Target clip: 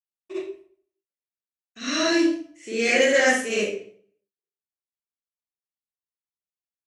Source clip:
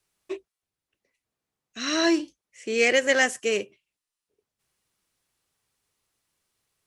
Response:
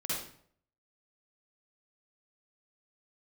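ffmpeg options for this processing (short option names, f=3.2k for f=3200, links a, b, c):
-filter_complex "[0:a]agate=range=-33dB:threshold=-54dB:ratio=3:detection=peak[a];[1:a]atrim=start_sample=2205,asetrate=48510,aresample=44100[b];[a][b]afir=irnorm=-1:irlink=0,volume=-1dB"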